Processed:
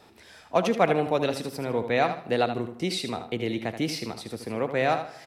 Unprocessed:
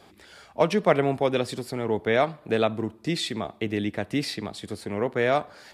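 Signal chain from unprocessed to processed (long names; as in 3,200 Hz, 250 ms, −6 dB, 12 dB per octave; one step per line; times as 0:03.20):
repeating echo 84 ms, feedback 29%, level −9.5 dB
convolution reverb RT60 1.2 s, pre-delay 15 ms, DRR 19 dB
wrong playback speed 44.1 kHz file played as 48 kHz
level −1.5 dB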